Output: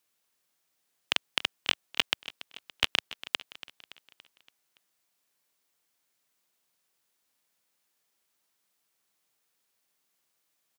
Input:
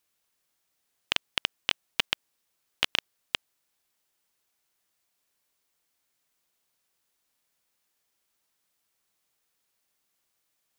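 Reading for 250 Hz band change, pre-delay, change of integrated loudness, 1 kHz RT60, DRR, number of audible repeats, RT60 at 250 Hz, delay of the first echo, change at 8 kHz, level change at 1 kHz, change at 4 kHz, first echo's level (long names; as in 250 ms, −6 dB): 0.0 dB, no reverb audible, 0.0 dB, no reverb audible, no reverb audible, 4, no reverb audible, 284 ms, 0.0 dB, 0.0 dB, 0.0 dB, −16.0 dB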